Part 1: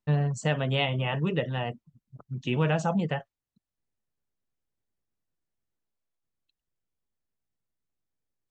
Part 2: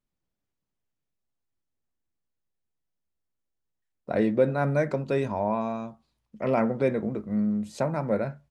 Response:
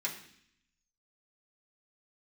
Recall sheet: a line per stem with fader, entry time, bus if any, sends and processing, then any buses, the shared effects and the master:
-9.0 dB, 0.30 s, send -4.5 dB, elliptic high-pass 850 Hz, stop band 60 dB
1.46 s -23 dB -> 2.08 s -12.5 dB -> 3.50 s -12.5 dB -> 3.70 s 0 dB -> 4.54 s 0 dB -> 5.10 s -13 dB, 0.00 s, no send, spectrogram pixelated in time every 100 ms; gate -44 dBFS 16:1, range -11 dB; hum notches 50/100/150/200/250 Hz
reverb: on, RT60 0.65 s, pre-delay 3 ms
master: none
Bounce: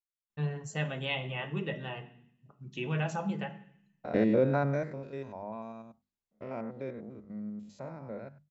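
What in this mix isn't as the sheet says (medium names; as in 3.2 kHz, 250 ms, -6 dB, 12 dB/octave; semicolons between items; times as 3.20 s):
stem 1: missing elliptic high-pass 850 Hz, stop band 60 dB; master: extra brick-wall FIR low-pass 7.7 kHz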